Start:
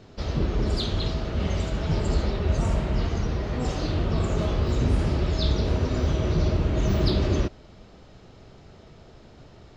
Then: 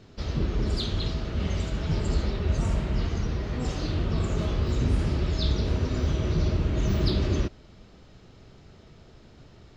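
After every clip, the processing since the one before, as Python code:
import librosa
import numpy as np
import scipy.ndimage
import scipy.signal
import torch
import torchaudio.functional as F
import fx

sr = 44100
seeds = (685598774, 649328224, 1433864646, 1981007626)

y = fx.peak_eq(x, sr, hz=690.0, db=-4.5, octaves=1.4)
y = F.gain(torch.from_numpy(y), -1.5).numpy()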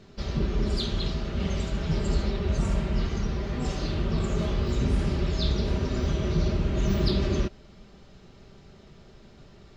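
y = x + 0.38 * np.pad(x, (int(5.1 * sr / 1000.0), 0))[:len(x)]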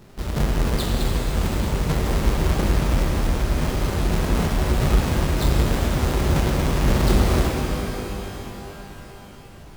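y = fx.halfwave_hold(x, sr)
y = fx.rev_shimmer(y, sr, seeds[0], rt60_s=3.9, semitones=12, shimmer_db=-8, drr_db=0.5)
y = F.gain(torch.from_numpy(y), -1.5).numpy()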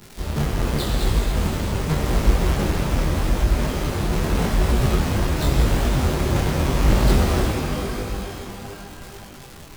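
y = fx.dmg_crackle(x, sr, seeds[1], per_s=280.0, level_db=-29.0)
y = fx.detune_double(y, sr, cents=30)
y = F.gain(torch.from_numpy(y), 4.0).numpy()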